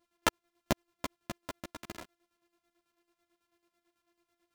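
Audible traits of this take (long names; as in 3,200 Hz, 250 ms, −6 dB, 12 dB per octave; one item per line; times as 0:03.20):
a buzz of ramps at a fixed pitch in blocks of 128 samples
chopped level 9.1 Hz, depth 60%, duty 45%
a shimmering, thickened sound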